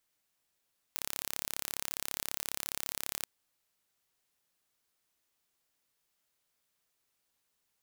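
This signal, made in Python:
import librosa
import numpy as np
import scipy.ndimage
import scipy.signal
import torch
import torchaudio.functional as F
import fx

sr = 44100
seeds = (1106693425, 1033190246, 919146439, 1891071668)

y = 10.0 ** (-8.0 / 20.0) * (np.mod(np.arange(round(2.28 * sr)), round(sr / 34.7)) == 0)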